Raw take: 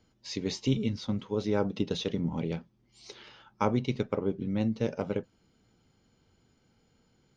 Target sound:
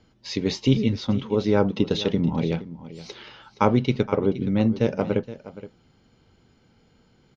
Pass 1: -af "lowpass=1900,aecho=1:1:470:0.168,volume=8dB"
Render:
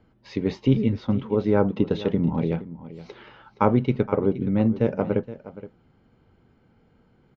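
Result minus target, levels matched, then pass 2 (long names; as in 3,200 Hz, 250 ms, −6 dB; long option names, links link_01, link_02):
4,000 Hz band −10.5 dB
-af "lowpass=5200,aecho=1:1:470:0.168,volume=8dB"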